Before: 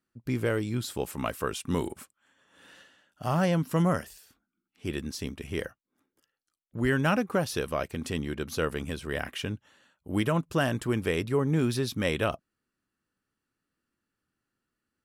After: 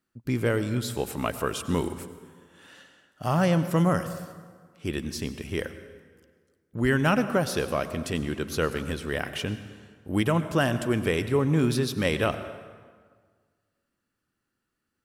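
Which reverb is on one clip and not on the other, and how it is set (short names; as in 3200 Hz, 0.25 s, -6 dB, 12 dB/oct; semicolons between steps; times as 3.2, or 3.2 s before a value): plate-style reverb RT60 1.7 s, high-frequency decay 0.7×, pre-delay 80 ms, DRR 11.5 dB; gain +2.5 dB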